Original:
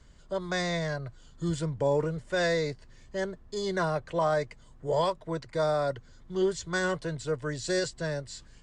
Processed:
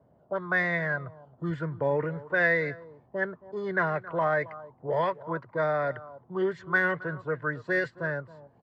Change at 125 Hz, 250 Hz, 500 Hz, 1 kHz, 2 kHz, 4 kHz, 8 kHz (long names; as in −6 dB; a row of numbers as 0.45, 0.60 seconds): −1.5 dB, −1.0 dB, −0.5 dB, +1.5 dB, +8.0 dB, −12.0 dB, below −20 dB